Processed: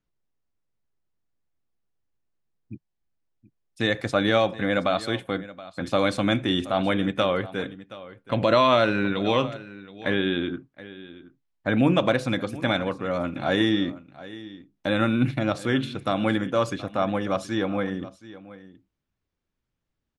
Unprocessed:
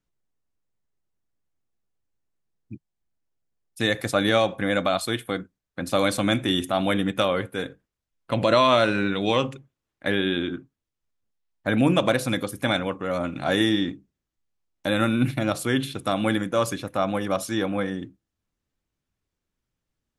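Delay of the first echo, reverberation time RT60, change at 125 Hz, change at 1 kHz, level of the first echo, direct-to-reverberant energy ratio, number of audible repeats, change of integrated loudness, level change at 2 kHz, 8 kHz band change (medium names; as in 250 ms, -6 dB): 724 ms, no reverb, 0.0 dB, -0.5 dB, -17.5 dB, no reverb, 1, -0.5 dB, -0.5 dB, no reading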